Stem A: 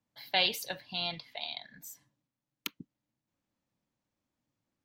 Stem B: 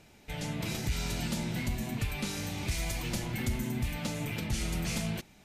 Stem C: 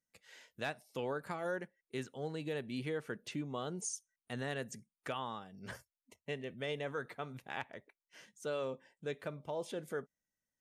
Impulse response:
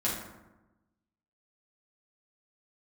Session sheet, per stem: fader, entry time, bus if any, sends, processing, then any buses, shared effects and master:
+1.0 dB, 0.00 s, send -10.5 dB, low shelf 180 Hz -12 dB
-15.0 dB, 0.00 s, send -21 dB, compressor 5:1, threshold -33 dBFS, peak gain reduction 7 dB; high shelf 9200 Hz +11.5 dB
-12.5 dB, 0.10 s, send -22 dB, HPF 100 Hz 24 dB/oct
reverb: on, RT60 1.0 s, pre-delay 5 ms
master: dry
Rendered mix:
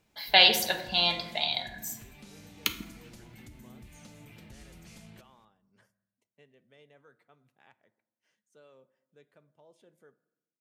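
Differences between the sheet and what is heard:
stem A +1.0 dB -> +7.0 dB; stem B: missing high shelf 9200 Hz +11.5 dB; stem C -12.5 dB -> -20.5 dB

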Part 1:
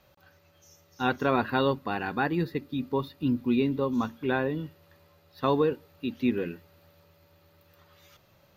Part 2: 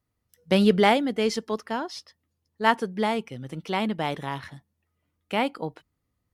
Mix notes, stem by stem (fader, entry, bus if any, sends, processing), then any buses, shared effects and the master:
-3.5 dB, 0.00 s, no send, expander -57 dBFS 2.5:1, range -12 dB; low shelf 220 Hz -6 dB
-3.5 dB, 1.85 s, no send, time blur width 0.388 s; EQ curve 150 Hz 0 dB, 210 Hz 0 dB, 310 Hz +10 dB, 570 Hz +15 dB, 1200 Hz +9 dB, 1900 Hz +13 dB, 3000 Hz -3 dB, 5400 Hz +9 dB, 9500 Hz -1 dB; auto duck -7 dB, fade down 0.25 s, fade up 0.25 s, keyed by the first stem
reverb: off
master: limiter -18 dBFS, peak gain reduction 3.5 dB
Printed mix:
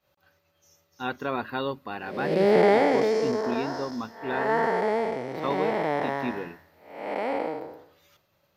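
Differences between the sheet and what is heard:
stem 2 -3.5 dB -> +3.5 dB; master: missing limiter -18 dBFS, peak gain reduction 3.5 dB

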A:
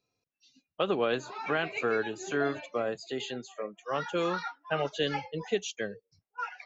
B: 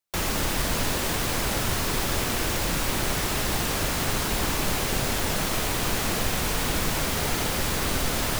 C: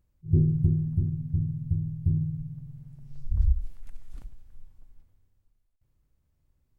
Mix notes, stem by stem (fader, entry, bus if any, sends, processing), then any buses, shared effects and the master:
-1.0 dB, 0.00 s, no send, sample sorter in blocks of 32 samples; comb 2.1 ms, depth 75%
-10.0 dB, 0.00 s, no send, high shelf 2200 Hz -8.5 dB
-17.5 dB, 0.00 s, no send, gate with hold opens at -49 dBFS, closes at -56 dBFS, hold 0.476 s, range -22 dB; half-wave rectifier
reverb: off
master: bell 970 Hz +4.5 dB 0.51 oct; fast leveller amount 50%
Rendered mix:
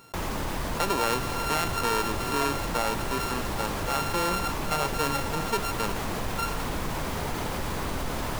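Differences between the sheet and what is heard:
stem A: missing comb 2.1 ms, depth 75%; stem C: muted

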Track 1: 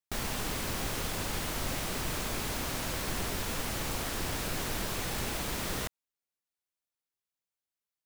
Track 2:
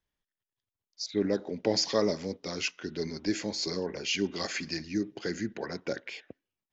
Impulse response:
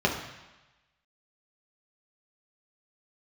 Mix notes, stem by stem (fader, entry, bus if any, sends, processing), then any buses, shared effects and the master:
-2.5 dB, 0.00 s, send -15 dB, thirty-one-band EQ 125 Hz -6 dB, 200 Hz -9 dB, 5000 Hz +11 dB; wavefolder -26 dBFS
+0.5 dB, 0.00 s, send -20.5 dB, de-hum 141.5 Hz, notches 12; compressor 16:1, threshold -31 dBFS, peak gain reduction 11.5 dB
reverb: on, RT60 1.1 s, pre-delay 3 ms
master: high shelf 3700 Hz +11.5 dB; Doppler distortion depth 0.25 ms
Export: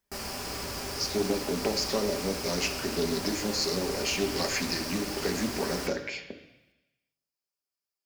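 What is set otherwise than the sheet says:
stem 1 -2.5 dB -> -9.5 dB; reverb return +7.0 dB

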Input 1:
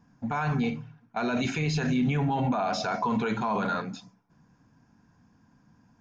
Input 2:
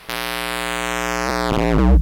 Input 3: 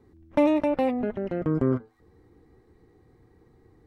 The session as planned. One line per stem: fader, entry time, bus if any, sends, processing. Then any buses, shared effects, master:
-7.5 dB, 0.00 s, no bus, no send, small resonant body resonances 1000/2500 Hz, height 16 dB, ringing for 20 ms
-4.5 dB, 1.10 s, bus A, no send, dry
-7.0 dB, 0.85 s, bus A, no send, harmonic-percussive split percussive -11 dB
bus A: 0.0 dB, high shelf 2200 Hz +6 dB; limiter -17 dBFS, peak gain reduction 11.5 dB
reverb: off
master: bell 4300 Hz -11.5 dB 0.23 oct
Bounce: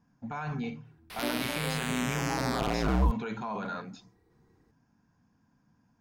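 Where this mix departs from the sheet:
stem 1: missing small resonant body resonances 1000/2500 Hz, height 16 dB, ringing for 20 ms; master: missing bell 4300 Hz -11.5 dB 0.23 oct

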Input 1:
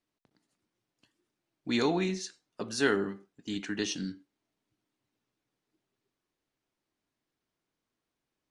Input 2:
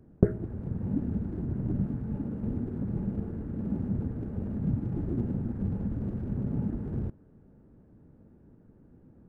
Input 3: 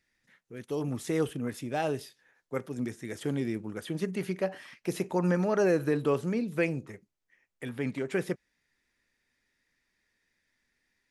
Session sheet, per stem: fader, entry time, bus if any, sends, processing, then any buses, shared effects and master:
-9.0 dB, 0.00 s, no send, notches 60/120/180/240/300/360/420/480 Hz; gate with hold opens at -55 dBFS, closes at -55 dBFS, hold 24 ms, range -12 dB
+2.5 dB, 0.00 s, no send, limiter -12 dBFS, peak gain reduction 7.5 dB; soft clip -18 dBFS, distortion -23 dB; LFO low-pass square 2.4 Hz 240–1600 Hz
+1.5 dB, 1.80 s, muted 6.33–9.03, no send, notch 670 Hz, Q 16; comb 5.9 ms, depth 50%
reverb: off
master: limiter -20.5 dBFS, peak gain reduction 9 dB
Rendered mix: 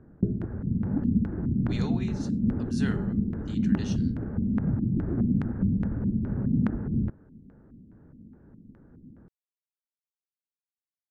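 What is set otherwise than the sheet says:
stem 3: muted; master: missing limiter -20.5 dBFS, peak gain reduction 9 dB

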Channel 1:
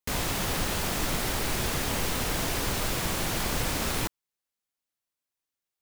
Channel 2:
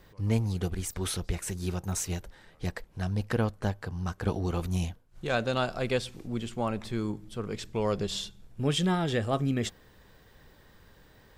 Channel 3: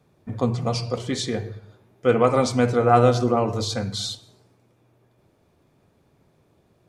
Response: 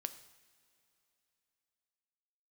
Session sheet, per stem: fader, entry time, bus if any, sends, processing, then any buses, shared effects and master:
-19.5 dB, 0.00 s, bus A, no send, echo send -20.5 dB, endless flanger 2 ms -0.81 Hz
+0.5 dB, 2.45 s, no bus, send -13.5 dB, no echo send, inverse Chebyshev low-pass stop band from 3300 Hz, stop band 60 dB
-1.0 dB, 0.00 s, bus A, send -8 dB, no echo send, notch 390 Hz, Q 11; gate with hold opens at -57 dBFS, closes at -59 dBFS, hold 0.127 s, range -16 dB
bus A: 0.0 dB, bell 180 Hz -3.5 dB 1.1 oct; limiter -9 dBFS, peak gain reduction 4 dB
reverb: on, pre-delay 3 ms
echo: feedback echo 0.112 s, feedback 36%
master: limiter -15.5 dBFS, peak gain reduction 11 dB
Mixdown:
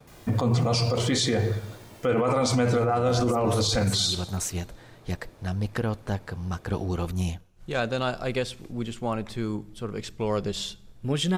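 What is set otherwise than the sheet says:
stem 2: missing inverse Chebyshev low-pass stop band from 3300 Hz, stop band 60 dB; stem 3 -1.0 dB -> +8.0 dB

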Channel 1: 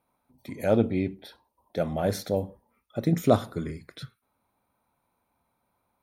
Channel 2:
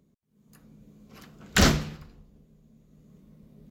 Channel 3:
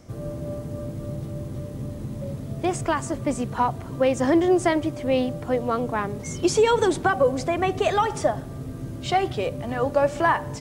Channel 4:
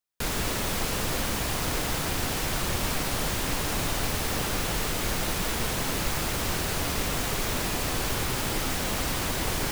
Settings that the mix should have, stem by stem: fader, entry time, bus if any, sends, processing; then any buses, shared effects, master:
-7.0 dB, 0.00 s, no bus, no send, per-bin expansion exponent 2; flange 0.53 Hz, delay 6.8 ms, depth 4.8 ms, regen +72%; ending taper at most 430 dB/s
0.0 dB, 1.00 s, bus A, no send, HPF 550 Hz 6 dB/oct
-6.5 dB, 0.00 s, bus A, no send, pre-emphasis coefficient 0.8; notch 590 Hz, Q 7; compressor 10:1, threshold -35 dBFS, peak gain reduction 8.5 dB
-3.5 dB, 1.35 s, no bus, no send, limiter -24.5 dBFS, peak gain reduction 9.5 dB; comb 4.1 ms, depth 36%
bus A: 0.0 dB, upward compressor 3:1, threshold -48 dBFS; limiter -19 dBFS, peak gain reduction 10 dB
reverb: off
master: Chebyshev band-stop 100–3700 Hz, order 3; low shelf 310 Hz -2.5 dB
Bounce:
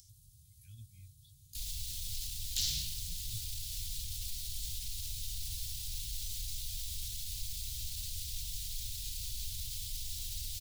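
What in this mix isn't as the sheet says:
stem 2 0.0 dB -> +7.5 dB; stem 3 -6.5 dB -> -13.0 dB; master: missing low shelf 310 Hz -2.5 dB

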